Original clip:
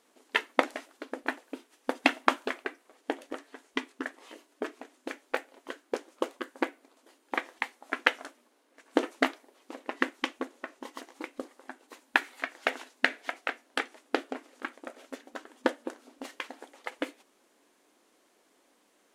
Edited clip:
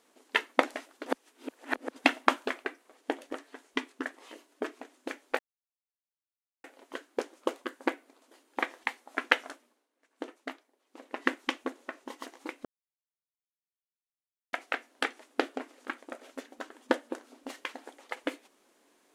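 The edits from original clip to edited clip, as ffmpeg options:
-filter_complex "[0:a]asplit=8[a][b][c][d][e][f][g][h];[a]atrim=end=1.062[i];[b]atrim=start=1.058:end=1.962,asetpts=PTS-STARTPTS,areverse[j];[c]atrim=start=1.958:end=5.39,asetpts=PTS-STARTPTS,afade=t=out:st=3.428:d=0.004:c=hsin,apad=pad_dur=1.25[k];[d]atrim=start=5.39:end=8.63,asetpts=PTS-STARTPTS,afade=t=in:d=0.004:c=hsin,afade=t=out:st=2.85:d=0.39:silence=0.199526[l];[e]atrim=start=8.63:end=9.61,asetpts=PTS-STARTPTS,volume=-14dB[m];[f]atrim=start=9.61:end=11.4,asetpts=PTS-STARTPTS,afade=t=in:d=0.39:silence=0.199526,afade=t=out:st=1.786:d=0.004:c=hsin[n];[g]atrim=start=11.4:end=13.28,asetpts=PTS-STARTPTS,volume=0[o];[h]atrim=start=13.28,asetpts=PTS-STARTPTS,afade=t=in:d=0.004:c=hsin[p];[i][j]acrossfade=d=0.004:c1=hsin:c2=hsin[q];[k][l][m][n][o][p]concat=n=6:v=0:a=1[r];[q][r]acrossfade=d=0.004:c1=hsin:c2=hsin"

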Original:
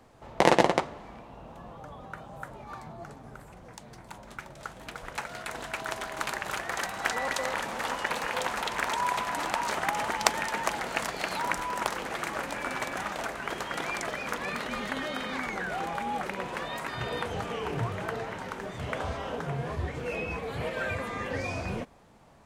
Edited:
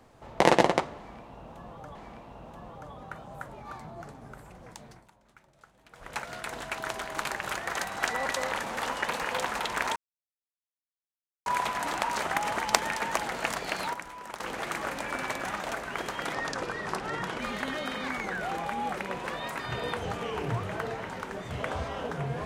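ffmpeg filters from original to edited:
-filter_complex "[0:a]asplit=9[a][b][c][d][e][f][g][h][i];[a]atrim=end=1.952[j];[b]atrim=start=0.968:end=4.12,asetpts=PTS-STARTPTS,afade=t=out:st=2.882:d=0.27:silence=0.149624[k];[c]atrim=start=4.12:end=4.92,asetpts=PTS-STARTPTS,volume=-16.5dB[l];[d]atrim=start=4.92:end=8.98,asetpts=PTS-STARTPTS,afade=t=in:d=0.27:silence=0.149624,afade=t=out:st=4.056:d=0.004:c=hsin,apad=pad_dur=1.5[m];[e]atrim=start=8.98:end=11.46,asetpts=PTS-STARTPTS,afade=t=in:d=0.004:c=hsin,afade=t=out:st=2.18:d=0.3:c=log:silence=0.298538[n];[f]atrim=start=11.46:end=11.92,asetpts=PTS-STARTPTS,volume=-10.5dB[o];[g]atrim=start=11.92:end=13.864,asetpts=PTS-STARTPTS,afade=t=in:d=0.3:c=log:silence=0.298538[p];[h]atrim=start=13.86:end=14.68,asetpts=PTS-STARTPTS,asetrate=34398,aresample=44100[q];[i]atrim=start=14.676[r];[k][l][m][n][o][p]concat=n=6:v=0:a=1[s];[j][s]acrossfade=d=0.004:c1=hsin:c2=hsin[t];[t][q]acrossfade=d=0.004:c1=hsin:c2=hsin[u];[u][r]acrossfade=d=0.004:c1=hsin:c2=hsin"

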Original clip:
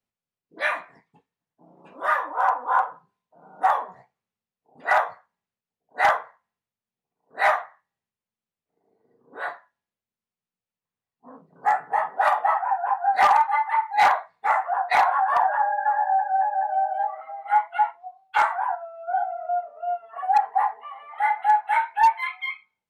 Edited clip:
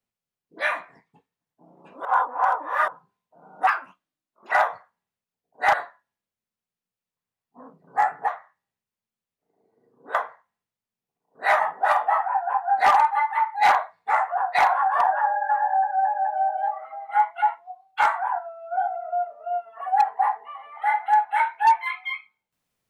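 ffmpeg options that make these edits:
-filter_complex "[0:a]asplit=9[a][b][c][d][e][f][g][h][i];[a]atrim=end=2.052[j];[b]atrim=start=2.048:end=2.882,asetpts=PTS-STARTPTS,areverse[k];[c]atrim=start=2.878:end=3.674[l];[d]atrim=start=3.67:end=4.88,asetpts=PTS-STARTPTS,asetrate=63063,aresample=44100,atrim=end_sample=37315,asetpts=PTS-STARTPTS[m];[e]atrim=start=4.876:end=6.102[n];[f]atrim=start=9.418:end=11.962[o];[g]atrim=start=7.548:end=9.422[p];[h]atrim=start=6.098:end=7.552[q];[i]atrim=start=11.958[r];[j][k]acrossfade=d=0.004:c1=hsin:c2=hsin[s];[s][l]acrossfade=d=0.004:c1=hsin:c2=hsin[t];[t][m]acrossfade=d=0.004:c1=hsin:c2=hsin[u];[u][n]acrossfade=d=0.004:c1=hsin:c2=hsin[v];[v][o]acrossfade=d=0.004:c1=hsin:c2=hsin[w];[w][p]acrossfade=d=0.004:c1=hsin:c2=hsin[x];[x][q]acrossfade=d=0.004:c1=hsin:c2=hsin[y];[y][r]acrossfade=d=0.004:c1=hsin:c2=hsin"

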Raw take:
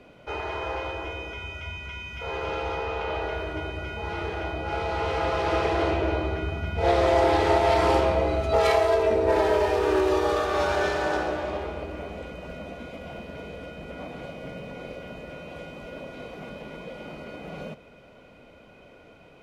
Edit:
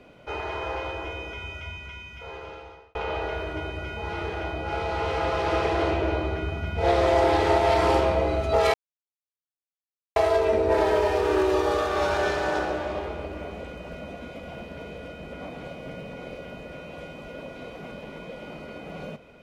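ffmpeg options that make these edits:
-filter_complex "[0:a]asplit=3[a][b][c];[a]atrim=end=2.95,asetpts=PTS-STARTPTS,afade=t=out:st=1.51:d=1.44[d];[b]atrim=start=2.95:end=8.74,asetpts=PTS-STARTPTS,afade=t=in:d=0.004:c=hsin,afade=t=out:st=5.786:d=0.004:c=hsin,apad=pad_dur=1.42[e];[c]atrim=start=8.74,asetpts=PTS-STARTPTS,afade=t=in:d=0.004:c=hsin[f];[d][e][f]concat=n=3:v=0:a=1"

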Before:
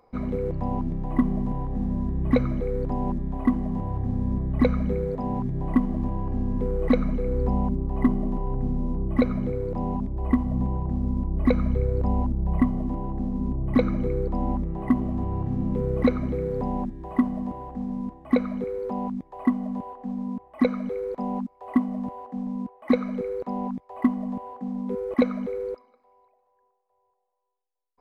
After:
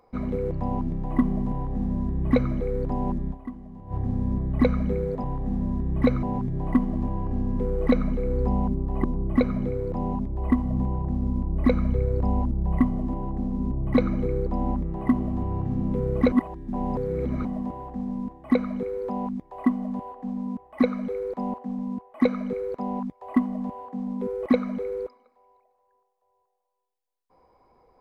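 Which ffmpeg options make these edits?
-filter_complex "[0:a]asplit=9[a][b][c][d][e][f][g][h][i];[a]atrim=end=3.56,asetpts=PTS-STARTPTS,afade=t=out:st=3.31:d=0.25:c=exp:silence=0.188365[j];[b]atrim=start=3.56:end=3.68,asetpts=PTS-STARTPTS,volume=-14.5dB[k];[c]atrim=start=3.68:end=5.242,asetpts=PTS-STARTPTS,afade=t=in:d=0.25:c=exp:silence=0.188365[l];[d]atrim=start=1.528:end=2.522[m];[e]atrim=start=5.238:end=8.052[n];[f]atrim=start=8.848:end=16.132[o];[g]atrim=start=16.128:end=17.262,asetpts=PTS-STARTPTS,areverse[p];[h]atrim=start=17.258:end=21.352[q];[i]atrim=start=22.218[r];[j][k][l]concat=n=3:v=0:a=1[s];[s][m]acrossfade=d=0.004:c1=hsin:c2=hsin[t];[t][n]acrossfade=d=0.004:c1=hsin:c2=hsin[u];[u][o]acrossfade=d=0.004:c1=hsin:c2=hsin[v];[v][p]acrossfade=d=0.004:c1=hsin:c2=hsin[w];[w][q]acrossfade=d=0.004:c1=hsin:c2=hsin[x];[x][r]acrossfade=d=0.004:c1=hsin:c2=hsin"

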